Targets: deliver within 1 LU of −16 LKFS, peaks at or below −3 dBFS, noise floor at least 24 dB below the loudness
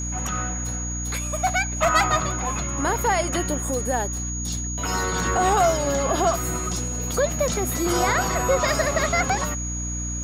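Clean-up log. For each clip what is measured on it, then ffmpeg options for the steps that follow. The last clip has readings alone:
mains hum 60 Hz; hum harmonics up to 300 Hz; level of the hum −28 dBFS; interfering tone 6,700 Hz; level of the tone −30 dBFS; integrated loudness −23.0 LKFS; sample peak −7.5 dBFS; target loudness −16.0 LKFS
→ -af "bandreject=frequency=60:width_type=h:width=6,bandreject=frequency=120:width_type=h:width=6,bandreject=frequency=180:width_type=h:width=6,bandreject=frequency=240:width_type=h:width=6,bandreject=frequency=300:width_type=h:width=6"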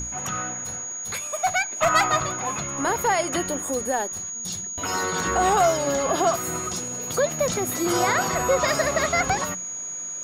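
mains hum none found; interfering tone 6,700 Hz; level of the tone −30 dBFS
→ -af "bandreject=frequency=6700:width=30"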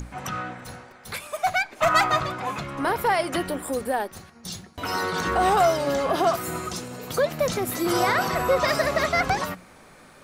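interfering tone none found; integrated loudness −24.0 LKFS; sample peak −9.0 dBFS; target loudness −16.0 LKFS
→ -af "volume=8dB,alimiter=limit=-3dB:level=0:latency=1"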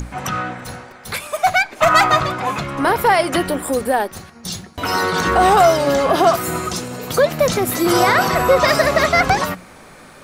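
integrated loudness −16.5 LKFS; sample peak −3.0 dBFS; background noise floor −42 dBFS

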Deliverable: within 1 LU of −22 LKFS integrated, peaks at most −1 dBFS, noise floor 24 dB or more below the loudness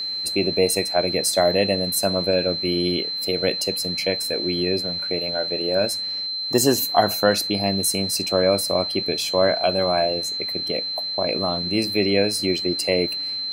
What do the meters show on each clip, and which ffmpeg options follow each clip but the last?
interfering tone 4,100 Hz; level of the tone −25 dBFS; integrated loudness −21.0 LKFS; sample peak −3.5 dBFS; target loudness −22.0 LKFS
→ -af "bandreject=frequency=4100:width=30"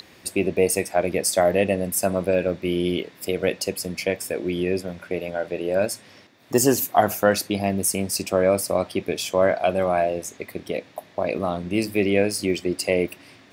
interfering tone none found; integrated loudness −23.5 LKFS; sample peak −4.5 dBFS; target loudness −22.0 LKFS
→ -af "volume=1.5dB"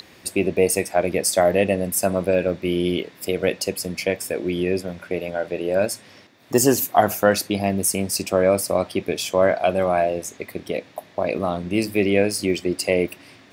integrated loudness −22.0 LKFS; sample peak −3.0 dBFS; background noise floor −49 dBFS

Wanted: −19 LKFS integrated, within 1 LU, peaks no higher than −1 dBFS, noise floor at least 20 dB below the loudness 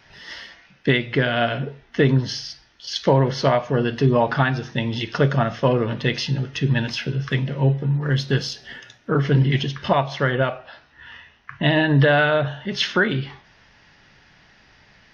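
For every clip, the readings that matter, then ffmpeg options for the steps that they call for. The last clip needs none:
integrated loudness −21.0 LKFS; sample peak −6.5 dBFS; target loudness −19.0 LKFS
→ -af "volume=2dB"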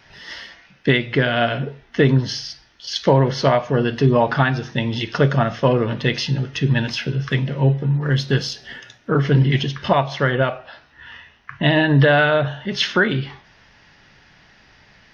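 integrated loudness −19.0 LKFS; sample peak −4.5 dBFS; background noise floor −53 dBFS

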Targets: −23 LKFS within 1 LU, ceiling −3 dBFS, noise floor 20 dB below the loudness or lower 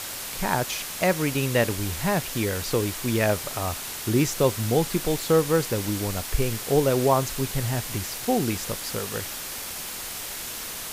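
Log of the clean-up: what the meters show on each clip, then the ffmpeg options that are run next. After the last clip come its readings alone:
background noise floor −35 dBFS; target noise floor −46 dBFS; integrated loudness −25.5 LKFS; sample peak −7.5 dBFS; target loudness −23.0 LKFS
→ -af "afftdn=noise_reduction=11:noise_floor=-35"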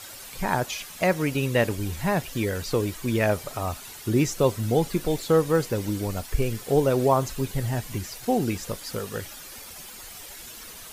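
background noise floor −42 dBFS; target noise floor −46 dBFS
→ -af "afftdn=noise_reduction=6:noise_floor=-42"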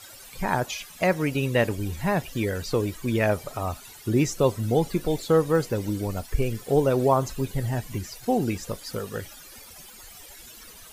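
background noise floor −46 dBFS; integrated loudness −26.0 LKFS; sample peak −8.0 dBFS; target loudness −23.0 LKFS
→ -af "volume=3dB"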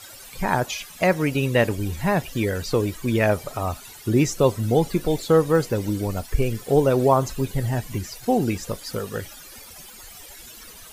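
integrated loudness −23.0 LKFS; sample peak −5.0 dBFS; background noise floor −43 dBFS

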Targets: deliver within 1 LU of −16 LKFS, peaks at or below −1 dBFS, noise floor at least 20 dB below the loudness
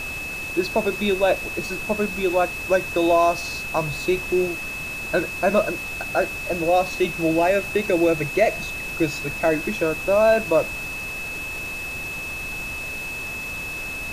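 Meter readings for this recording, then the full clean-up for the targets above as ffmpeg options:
interfering tone 2,600 Hz; level of the tone −29 dBFS; background noise floor −31 dBFS; target noise floor −43 dBFS; integrated loudness −23.0 LKFS; sample peak −5.5 dBFS; target loudness −16.0 LKFS
→ -af "bandreject=frequency=2600:width=30"
-af "afftdn=noise_reduction=12:noise_floor=-31"
-af "volume=7dB,alimiter=limit=-1dB:level=0:latency=1"

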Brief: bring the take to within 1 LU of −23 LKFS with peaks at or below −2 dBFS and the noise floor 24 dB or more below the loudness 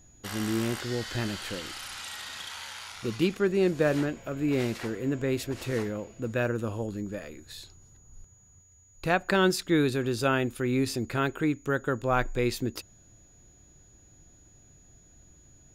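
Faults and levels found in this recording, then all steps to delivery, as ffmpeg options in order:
interfering tone 6,800 Hz; level of the tone −58 dBFS; integrated loudness −29.5 LKFS; sample peak −10.5 dBFS; target loudness −23.0 LKFS
→ -af "bandreject=frequency=6800:width=30"
-af "volume=6.5dB"

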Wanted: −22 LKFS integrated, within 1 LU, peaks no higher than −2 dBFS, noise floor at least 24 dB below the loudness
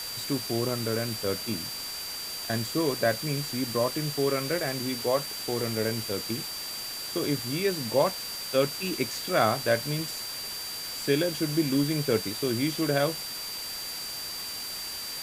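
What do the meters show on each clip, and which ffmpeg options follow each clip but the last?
interfering tone 4,700 Hz; level of the tone −36 dBFS; background noise floor −36 dBFS; target noise floor −53 dBFS; integrated loudness −28.5 LKFS; sample peak −9.5 dBFS; target loudness −22.0 LKFS
→ -af "bandreject=frequency=4700:width=30"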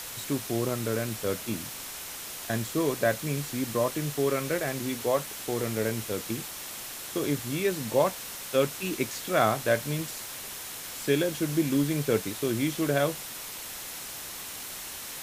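interfering tone none found; background noise floor −40 dBFS; target noise floor −54 dBFS
→ -af "afftdn=noise_reduction=14:noise_floor=-40"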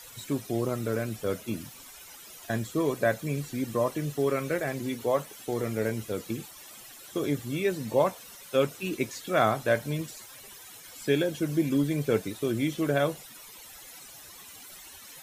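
background noise floor −48 dBFS; target noise floor −54 dBFS
→ -af "afftdn=noise_reduction=6:noise_floor=-48"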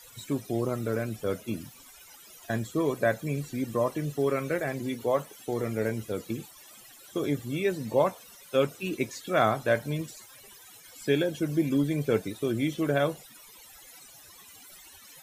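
background noise floor −52 dBFS; target noise floor −54 dBFS
→ -af "afftdn=noise_reduction=6:noise_floor=-52"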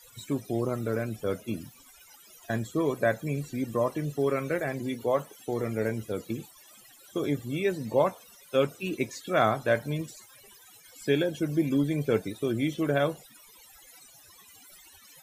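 background noise floor −55 dBFS; integrated loudness −29.5 LKFS; sample peak −10.0 dBFS; target loudness −22.0 LKFS
→ -af "volume=7.5dB"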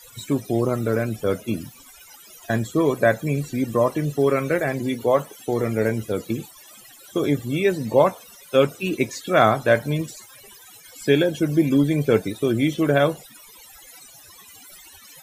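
integrated loudness −22.0 LKFS; sample peak −2.5 dBFS; background noise floor −47 dBFS

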